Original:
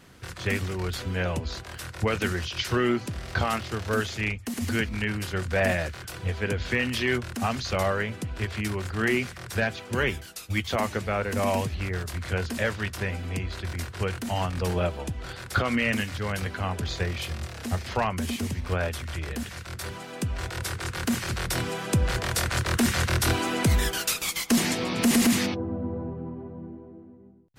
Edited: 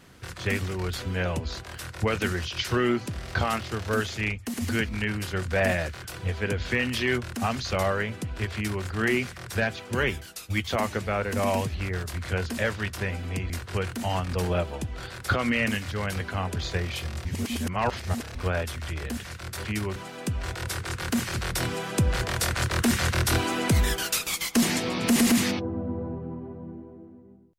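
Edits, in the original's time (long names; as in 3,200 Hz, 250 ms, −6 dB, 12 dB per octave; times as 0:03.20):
0:08.54–0:08.85: duplicate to 0:19.91
0:13.50–0:13.76: remove
0:17.51–0:18.61: reverse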